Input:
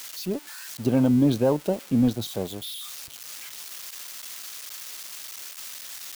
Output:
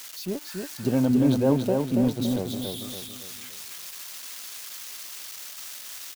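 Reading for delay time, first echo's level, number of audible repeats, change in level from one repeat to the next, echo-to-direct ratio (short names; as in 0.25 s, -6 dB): 0.282 s, -4.0 dB, 5, -7.5 dB, -3.0 dB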